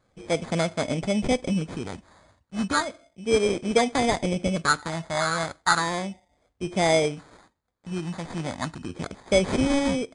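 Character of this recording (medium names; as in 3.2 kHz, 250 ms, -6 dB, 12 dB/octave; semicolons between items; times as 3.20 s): phasing stages 4, 0.33 Hz, lowest notch 430–2000 Hz; aliases and images of a low sample rate 2.8 kHz, jitter 0%; MP3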